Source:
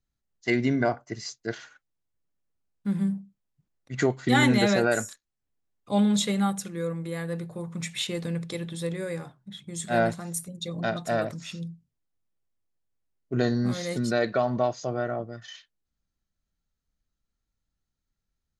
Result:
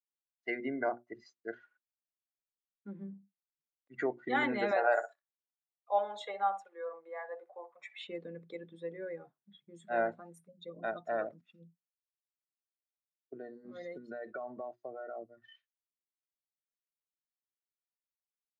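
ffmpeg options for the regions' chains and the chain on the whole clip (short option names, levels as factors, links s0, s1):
-filter_complex "[0:a]asettb=1/sr,asplit=3[s0][s1][s2];[s0]atrim=end=4.714[s3];[s1]atrim=start=4.71:end=7.98,asetpts=PTS-STARTPTS,afade=t=in:d=0.004:c=qsin,afade=t=out:st=3.266:d=0.004:c=qsin,highpass=f=720:t=q:w=2.9,asplit=2[s4][s5];[s5]adelay=61,lowpass=f=2200:p=1,volume=0.355,asplit=2[s6][s7];[s7]adelay=61,lowpass=f=2200:p=1,volume=0.16[s8];[s4][s6][s8]amix=inputs=3:normalize=0,atrim=end_sample=144207[s9];[s2]atrim=start=7.976[s10];[s3][s9]acrossfade=d=0.004:c1=hsin:c2=qsin[s11];[s11][s10]acrossfade=d=0.004:c1=qsin:c2=hsin,asettb=1/sr,asplit=3[s12][s13][s14];[s12]atrim=end=11.414[s15];[s13]atrim=start=11.41:end=15.37,asetpts=PTS-STARTPTS,afade=t=in:d=0.004:c=qsin,afade=t=out:st=3.956:d=0.004:c=qsin,agate=range=0.0224:threshold=0.02:ratio=3:release=100:detection=peak,acompressor=threshold=0.0398:ratio=20:attack=3.2:release=140:knee=1:detection=peak[s16];[s14]atrim=start=15.366[s17];[s15][s16]acrossfade=d=0.004:c1=hsin:c2=qsin[s18];[s18][s17]acrossfade=d=0.004:c1=qsin:c2=hsin,bandreject=f=60:t=h:w=6,bandreject=f=120:t=h:w=6,bandreject=f=180:t=h:w=6,bandreject=f=240:t=h:w=6,bandreject=f=300:t=h:w=6,bandreject=f=360:t=h:w=6,afftdn=nr=17:nf=-36,acrossover=split=280 2800:gain=0.0708 1 0.0631[s19][s20][s21];[s19][s20][s21]amix=inputs=3:normalize=0,volume=0.473"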